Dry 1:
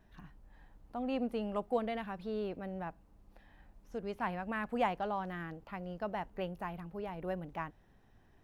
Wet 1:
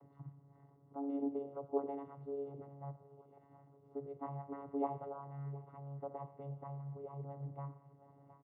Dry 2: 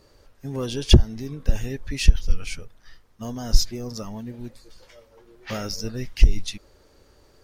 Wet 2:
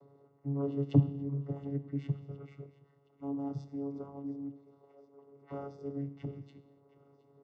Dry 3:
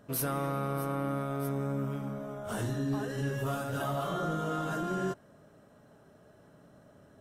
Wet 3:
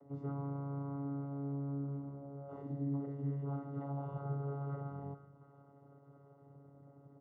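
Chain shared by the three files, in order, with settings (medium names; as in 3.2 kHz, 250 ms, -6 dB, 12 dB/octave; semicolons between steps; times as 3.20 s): bass shelf 420 Hz -6.5 dB; comb 4.4 ms, depth 43%; on a send: thinning echo 718 ms, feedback 58%, high-pass 700 Hz, level -19 dB; on the sum: gated-style reverb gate 320 ms falling, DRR 10 dB; upward compressor, threshold -44 dBFS; peaking EQ 140 Hz +4 dB 0.55 oct; vocoder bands 16, saw 140 Hz; Savitzky-Golay filter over 65 samples; trim -3.5 dB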